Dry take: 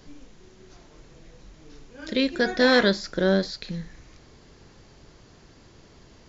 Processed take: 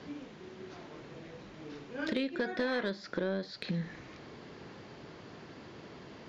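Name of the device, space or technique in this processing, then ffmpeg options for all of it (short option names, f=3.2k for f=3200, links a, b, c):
AM radio: -af "highpass=150,lowpass=3.3k,acompressor=threshold=-35dB:ratio=8,asoftclip=type=tanh:threshold=-27dB,volume=5.5dB"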